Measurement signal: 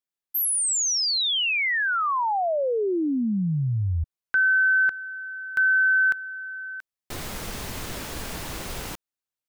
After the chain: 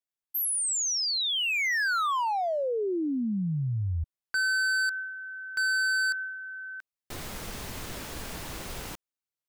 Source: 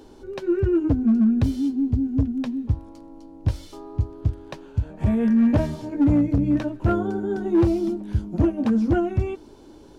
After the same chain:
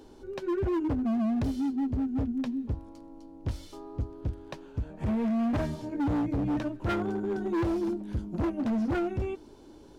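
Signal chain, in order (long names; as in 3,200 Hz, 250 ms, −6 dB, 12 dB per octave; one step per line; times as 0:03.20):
dynamic equaliser 1,500 Hz, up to +6 dB, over −32 dBFS, Q 1.2
hard clipping −21 dBFS
level −4.5 dB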